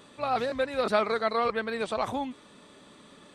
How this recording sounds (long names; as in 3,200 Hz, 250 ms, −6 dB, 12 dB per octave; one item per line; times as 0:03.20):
background noise floor −54 dBFS
spectral slope −2.5 dB per octave